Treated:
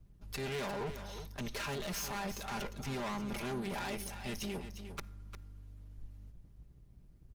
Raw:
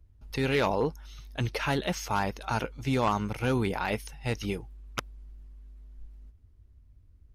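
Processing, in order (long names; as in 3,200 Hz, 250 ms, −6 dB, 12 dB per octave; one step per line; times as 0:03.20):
lower of the sound and its delayed copy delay 5 ms
high-shelf EQ 5,600 Hz +5 dB
in parallel at −1 dB: compressor whose output falls as the input rises −35 dBFS, ratio −0.5
on the sum: soft clipping −25 dBFS, distortion −13 dB
single-tap delay 353 ms −10.5 dB
on a send at −20.5 dB: convolution reverb RT60 1.2 s, pre-delay 48 ms
on the sum: level −8.5 dB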